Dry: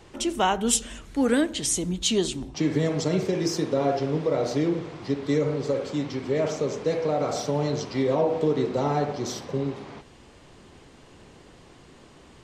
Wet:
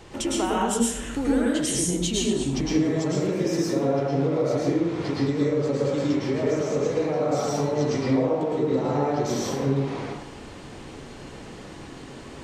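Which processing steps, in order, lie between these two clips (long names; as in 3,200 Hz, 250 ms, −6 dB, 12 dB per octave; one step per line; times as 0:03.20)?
dynamic equaliser 4,200 Hz, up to −5 dB, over −45 dBFS, Q 1.2
downward compressor, threshold −31 dBFS, peak gain reduction 13 dB
dense smooth reverb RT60 0.78 s, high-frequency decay 0.65×, pre-delay 95 ms, DRR −4.5 dB
level +4 dB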